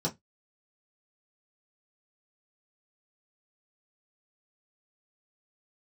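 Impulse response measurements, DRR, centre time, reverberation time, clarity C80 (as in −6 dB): −4.5 dB, 11 ms, 0.15 s, 32.5 dB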